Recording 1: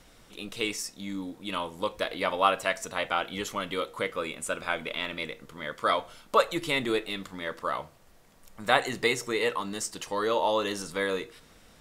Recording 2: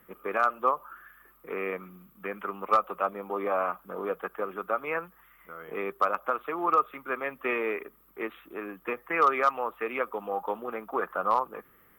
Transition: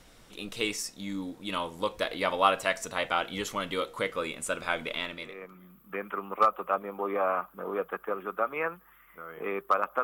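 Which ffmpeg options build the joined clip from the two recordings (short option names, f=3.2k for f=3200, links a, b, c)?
-filter_complex "[0:a]apad=whole_dur=10.03,atrim=end=10.03,atrim=end=5.78,asetpts=PTS-STARTPTS[a];[1:a]atrim=start=1.27:end=6.34,asetpts=PTS-STARTPTS[b];[a][b]acrossfade=d=0.82:c1=qua:c2=qua"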